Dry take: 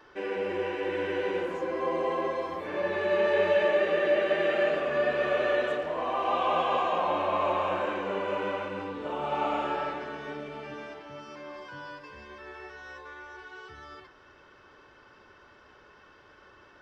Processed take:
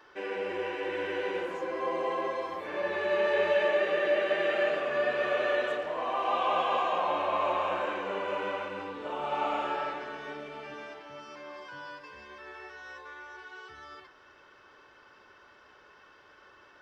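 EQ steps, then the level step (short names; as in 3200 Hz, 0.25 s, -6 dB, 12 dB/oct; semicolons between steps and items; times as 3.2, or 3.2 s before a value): low shelf 320 Hz -9 dB; 0.0 dB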